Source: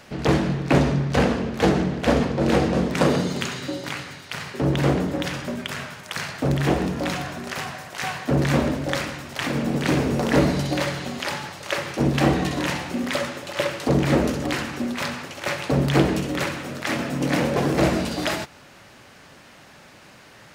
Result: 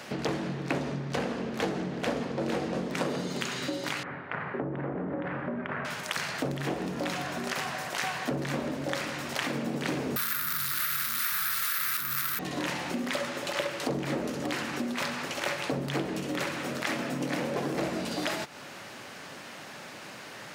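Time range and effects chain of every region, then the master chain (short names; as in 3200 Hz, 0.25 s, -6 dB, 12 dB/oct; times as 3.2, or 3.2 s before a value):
4.03–5.85 LPF 1800 Hz 24 dB/oct + compressor 3:1, threshold -26 dBFS
10.16–12.39 infinite clipping + EQ curve 110 Hz 0 dB, 360 Hz -17 dB, 520 Hz -15 dB, 740 Hz -22 dB, 1300 Hz +12 dB, 2700 Hz +2 dB, 3900 Hz -20 dB, 11000 Hz +14 dB, 15000 Hz -8 dB + careless resampling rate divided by 3×, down none, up zero stuff
whole clip: compressor 4:1, threshold -34 dBFS; Bessel high-pass 180 Hz, order 2; gain +4.5 dB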